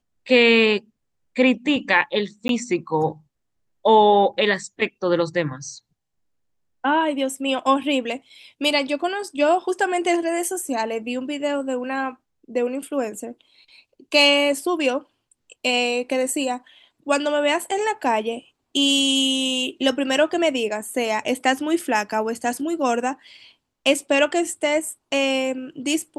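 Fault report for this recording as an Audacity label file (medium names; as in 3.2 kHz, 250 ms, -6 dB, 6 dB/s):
2.480000	2.490000	dropout 12 ms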